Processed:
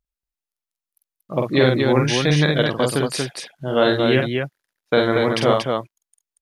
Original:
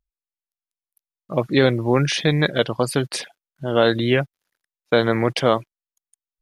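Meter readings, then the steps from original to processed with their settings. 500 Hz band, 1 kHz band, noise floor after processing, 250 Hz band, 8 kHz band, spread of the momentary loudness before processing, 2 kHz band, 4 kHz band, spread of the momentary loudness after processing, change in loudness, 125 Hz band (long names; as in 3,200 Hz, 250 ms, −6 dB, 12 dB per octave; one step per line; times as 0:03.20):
+1.5 dB, +1.5 dB, below −85 dBFS, +1.5 dB, +1.5 dB, 10 LU, +1.5 dB, +1.5 dB, 10 LU, +1.0 dB, +1.5 dB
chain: loudspeakers that aren't time-aligned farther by 16 metres −4 dB, 80 metres −4 dB
level −1 dB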